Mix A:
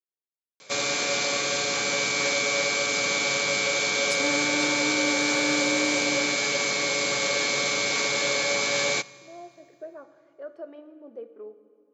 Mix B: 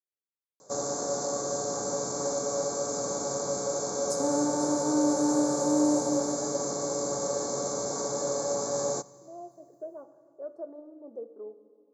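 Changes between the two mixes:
second sound: send on
master: add Chebyshev band-stop filter 840–7,700 Hz, order 2

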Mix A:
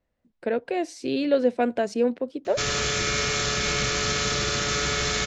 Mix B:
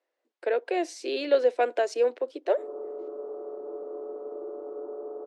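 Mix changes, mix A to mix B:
background: add Gaussian smoothing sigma 14 samples
master: add Butterworth high-pass 330 Hz 48 dB per octave

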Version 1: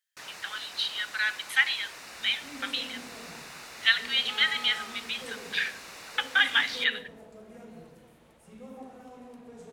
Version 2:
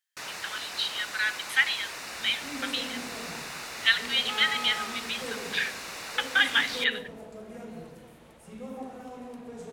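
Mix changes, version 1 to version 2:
first sound +6.0 dB
second sound +5.5 dB

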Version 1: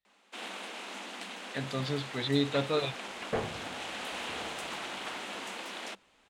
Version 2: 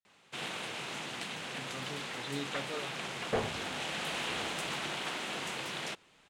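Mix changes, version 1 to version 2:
speech −11.5 dB
first sound: remove Chebyshev high-pass with heavy ripple 190 Hz, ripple 3 dB

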